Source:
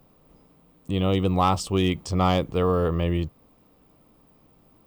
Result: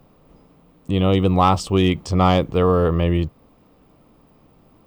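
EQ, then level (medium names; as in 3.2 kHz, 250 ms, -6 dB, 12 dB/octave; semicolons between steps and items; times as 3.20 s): treble shelf 6.1 kHz -7.5 dB; +5.5 dB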